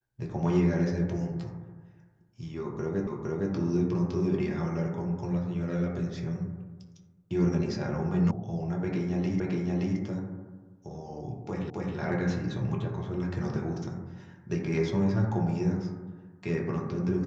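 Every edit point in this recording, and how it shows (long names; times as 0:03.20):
0:03.07: the same again, the last 0.46 s
0:08.31: cut off before it has died away
0:09.40: the same again, the last 0.57 s
0:11.70: the same again, the last 0.27 s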